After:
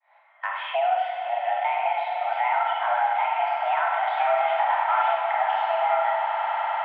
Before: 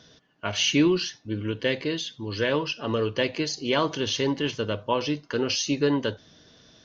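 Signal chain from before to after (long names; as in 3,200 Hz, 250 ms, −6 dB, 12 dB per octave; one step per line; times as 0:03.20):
fade in at the beginning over 1.75 s
brickwall limiter −19 dBFS, peak gain reduction 9 dB
0:04.17–0:05.17: power curve on the samples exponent 0.5
high-frequency loss of the air 50 metres
echo that builds up and dies away 100 ms, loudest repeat 8, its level −16 dB
four-comb reverb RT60 1 s, combs from 32 ms, DRR −1 dB
single-sideband voice off tune +380 Hz 290–2,100 Hz
multiband upward and downward compressor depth 70%
level +3 dB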